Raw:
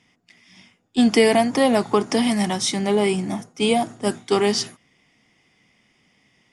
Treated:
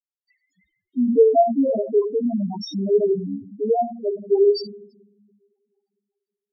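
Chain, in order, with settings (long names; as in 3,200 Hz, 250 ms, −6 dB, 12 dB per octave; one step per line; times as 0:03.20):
bit reduction 7 bits
coupled-rooms reverb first 0.75 s, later 2.6 s, from −26 dB, DRR 0.5 dB
spectral peaks only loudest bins 2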